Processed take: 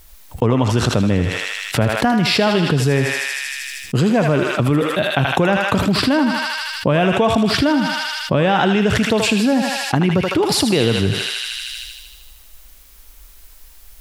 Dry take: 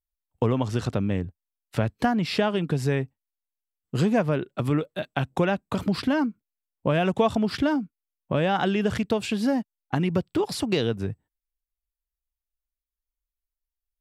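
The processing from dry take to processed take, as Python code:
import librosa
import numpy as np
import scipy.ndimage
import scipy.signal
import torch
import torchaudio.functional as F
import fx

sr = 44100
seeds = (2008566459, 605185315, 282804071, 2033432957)

p1 = x + fx.echo_thinned(x, sr, ms=78, feedback_pct=71, hz=1000.0, wet_db=-5, dry=0)
p2 = fx.env_flatten(p1, sr, amount_pct=70)
y = p2 * librosa.db_to_amplitude(4.0)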